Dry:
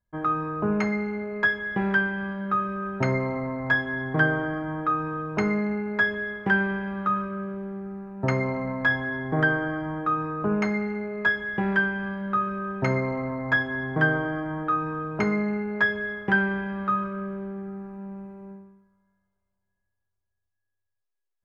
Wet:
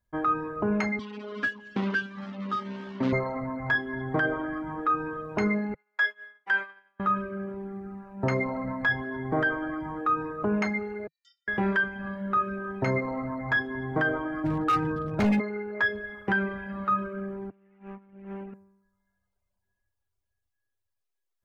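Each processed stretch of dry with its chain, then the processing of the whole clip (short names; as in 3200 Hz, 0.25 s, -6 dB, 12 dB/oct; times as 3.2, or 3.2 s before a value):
0.99–3.13 median filter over 41 samples + speaker cabinet 190–5600 Hz, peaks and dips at 250 Hz +9 dB, 370 Hz -5 dB, 700 Hz -6 dB, 1100 Hz +6 dB, 3100 Hz +5 dB
5.74–7 HPF 870 Hz + high shelf 2200 Hz +3 dB + expander -27 dBFS
11.07–11.48 inverse Chebyshev high-pass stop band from 990 Hz, stop band 80 dB + air absorption 92 m + ring modulator 270 Hz
14.44–15.4 bell 110 Hz +13.5 dB 2.3 oct + hard clip -19 dBFS + mismatched tape noise reduction encoder only
17.5–18.54 minimum comb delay 4.9 ms + resonant high shelf 3300 Hz -8.5 dB, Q 3 + negative-ratio compressor -42 dBFS, ratio -0.5
whole clip: reverb removal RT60 0.98 s; bell 160 Hz -11 dB 0.22 oct; limiter -20 dBFS; gain +3 dB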